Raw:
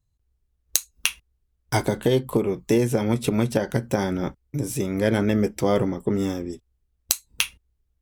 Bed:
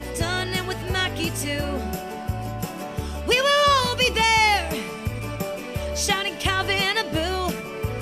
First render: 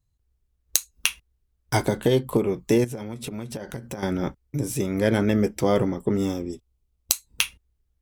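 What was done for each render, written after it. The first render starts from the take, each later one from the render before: 2.84–4.03 compressor, threshold -30 dBFS; 6.17–7.14 bell 1700 Hz -10 dB 0.28 oct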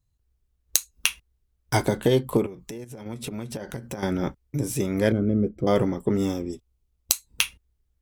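2.46–3.06 compressor 5:1, threshold -36 dBFS; 5.12–5.67 running mean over 49 samples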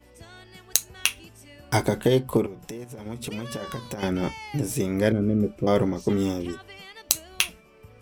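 add bed -22 dB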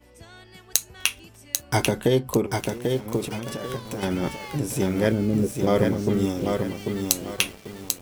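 lo-fi delay 0.792 s, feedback 35%, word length 7-bit, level -4 dB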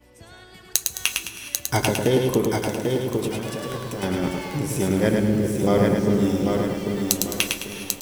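feedback echo 0.106 s, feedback 37%, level -4 dB; non-linear reverb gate 0.44 s rising, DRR 11 dB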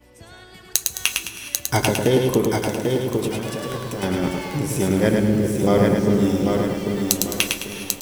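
gain +2 dB; limiter -1 dBFS, peak gain reduction 1 dB

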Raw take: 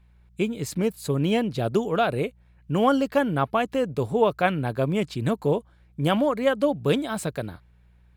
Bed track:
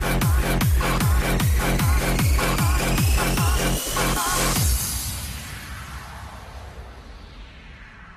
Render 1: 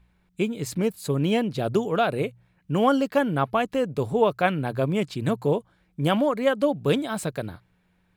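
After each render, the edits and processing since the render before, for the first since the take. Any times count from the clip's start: de-hum 60 Hz, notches 2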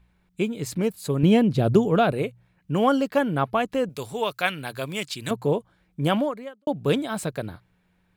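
1.23–2.12 low shelf 330 Hz +10 dB; 3.89–5.31 tilt shelf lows -9.5 dB, about 1400 Hz; 6.18–6.67 fade out quadratic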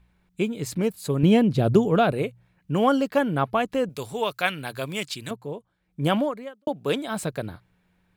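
5.14–6.06 dip -11 dB, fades 0.25 s; 6.68–7.08 HPF 360 Hz 6 dB/oct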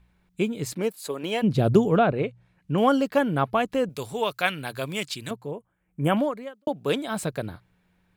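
0.72–1.42 HPF 220 Hz -> 750 Hz; 1.95–2.78 treble ducked by the level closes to 2500 Hz, closed at -18 dBFS; 5.51–6.17 Butterworth band-stop 4500 Hz, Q 1.1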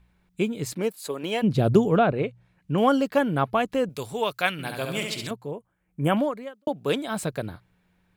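4.52–5.27 flutter echo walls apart 11.9 m, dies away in 0.88 s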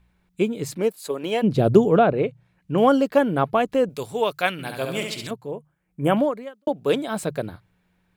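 notches 50/100/150 Hz; dynamic EQ 460 Hz, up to +5 dB, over -33 dBFS, Q 0.73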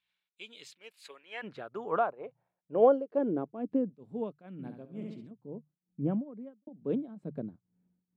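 band-pass sweep 3400 Hz -> 220 Hz, 0.62–3.87; tremolo triangle 2.2 Hz, depth 90%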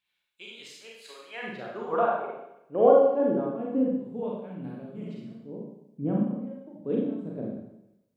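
Schroeder reverb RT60 0.85 s, combs from 31 ms, DRR -3.5 dB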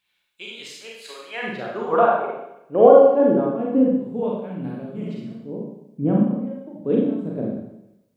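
gain +8 dB; limiter -1 dBFS, peak gain reduction 2.5 dB

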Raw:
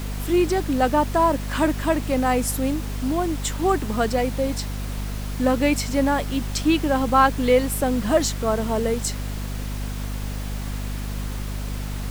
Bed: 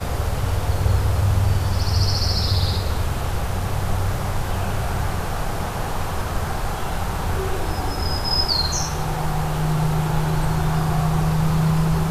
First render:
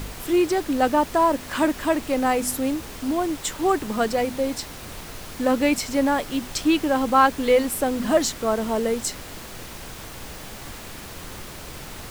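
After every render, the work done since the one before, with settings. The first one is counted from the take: de-hum 50 Hz, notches 5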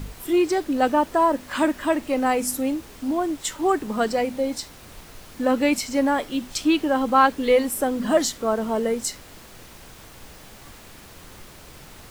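noise print and reduce 7 dB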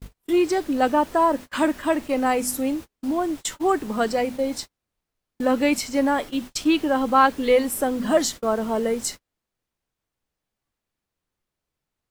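gate -32 dBFS, range -40 dB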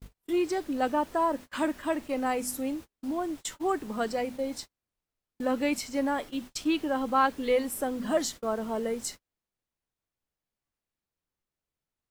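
gain -7.5 dB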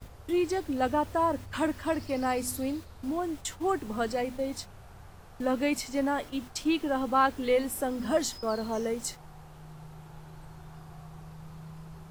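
add bed -26.5 dB

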